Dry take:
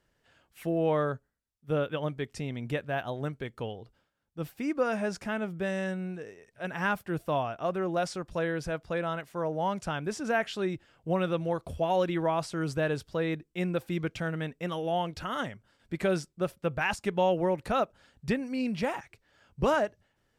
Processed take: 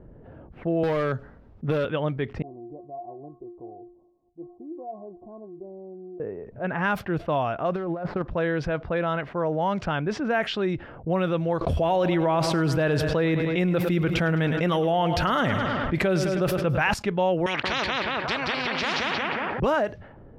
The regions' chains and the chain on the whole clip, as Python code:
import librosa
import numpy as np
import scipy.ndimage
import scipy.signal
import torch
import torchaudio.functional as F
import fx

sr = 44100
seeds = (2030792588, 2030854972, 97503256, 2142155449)

y = fx.chain(x, sr, fx.high_shelf(hz=4400.0, db=8.5),
    fx.clip_hard(threshold_db=-25.5),
    fx.band_squash(depth_pct=100), at=(0.83, 1.85))
y = fx.chain(y, sr, fx.steep_lowpass(hz=1000.0, slope=72),
    fx.tilt_eq(slope=3.0),
    fx.stiff_resonator(f0_hz=350.0, decay_s=0.27, stiffness=0.008), at=(2.42, 6.2))
y = fx.chain(y, sr, fx.median_filter(points=15),
    fx.high_shelf(hz=8400.0, db=9.0),
    fx.over_compress(threshold_db=-35.0, ratio=-0.5), at=(7.75, 8.22))
y = fx.chain(y, sr, fx.echo_feedback(ms=105, feedback_pct=57, wet_db=-16.0),
    fx.env_flatten(amount_pct=70), at=(11.61, 16.94))
y = fx.chain(y, sr, fx.bandpass_edges(low_hz=270.0, high_hz=4800.0),
    fx.echo_feedback(ms=180, feedback_pct=35, wet_db=-5),
    fx.spectral_comp(ratio=10.0), at=(17.46, 19.6))
y = fx.env_lowpass(y, sr, base_hz=450.0, full_db=-24.0)
y = fx.peak_eq(y, sr, hz=8300.0, db=-11.0, octaves=1.1)
y = fx.env_flatten(y, sr, amount_pct=50)
y = F.gain(torch.from_numpy(y), 2.0).numpy()